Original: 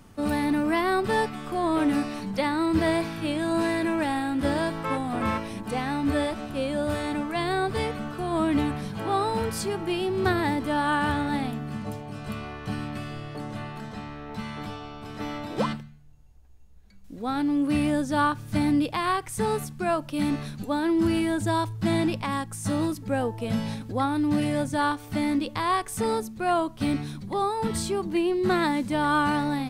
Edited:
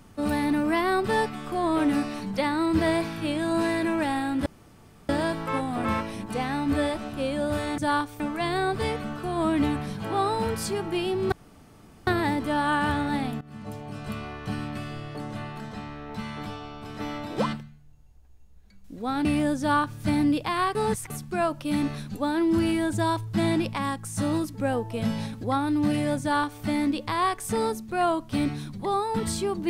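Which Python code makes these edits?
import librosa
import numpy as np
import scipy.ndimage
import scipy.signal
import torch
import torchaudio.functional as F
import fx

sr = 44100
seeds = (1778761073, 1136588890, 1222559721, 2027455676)

y = fx.edit(x, sr, fx.insert_room_tone(at_s=4.46, length_s=0.63),
    fx.insert_room_tone(at_s=10.27, length_s=0.75),
    fx.fade_in_from(start_s=11.61, length_s=0.45, floor_db=-19.0),
    fx.cut(start_s=17.45, length_s=0.28),
    fx.reverse_span(start_s=19.23, length_s=0.35),
    fx.duplicate(start_s=24.69, length_s=0.42, to_s=7.15), tone=tone)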